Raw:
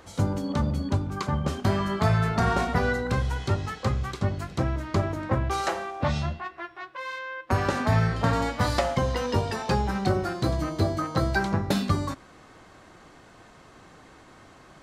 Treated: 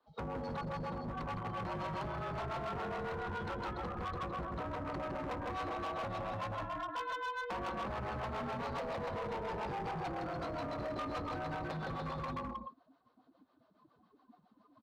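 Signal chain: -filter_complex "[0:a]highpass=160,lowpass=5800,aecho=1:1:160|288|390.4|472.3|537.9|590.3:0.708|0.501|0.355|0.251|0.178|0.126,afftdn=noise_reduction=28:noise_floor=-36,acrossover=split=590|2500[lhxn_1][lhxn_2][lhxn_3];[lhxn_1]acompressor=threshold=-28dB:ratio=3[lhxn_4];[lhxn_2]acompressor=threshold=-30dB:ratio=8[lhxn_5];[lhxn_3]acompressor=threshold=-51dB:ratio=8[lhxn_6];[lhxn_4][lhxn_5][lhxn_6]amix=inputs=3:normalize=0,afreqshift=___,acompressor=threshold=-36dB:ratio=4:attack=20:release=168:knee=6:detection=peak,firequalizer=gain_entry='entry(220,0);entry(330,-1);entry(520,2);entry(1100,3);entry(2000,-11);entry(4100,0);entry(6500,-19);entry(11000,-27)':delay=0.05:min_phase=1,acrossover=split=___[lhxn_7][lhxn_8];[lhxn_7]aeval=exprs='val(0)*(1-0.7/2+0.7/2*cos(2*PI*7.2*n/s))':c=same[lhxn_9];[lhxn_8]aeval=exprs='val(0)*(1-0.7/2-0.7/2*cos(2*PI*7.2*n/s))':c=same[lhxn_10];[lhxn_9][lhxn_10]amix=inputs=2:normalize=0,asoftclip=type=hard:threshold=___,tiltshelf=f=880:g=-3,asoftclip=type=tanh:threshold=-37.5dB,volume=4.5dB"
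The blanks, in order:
-39, 420, -37.5dB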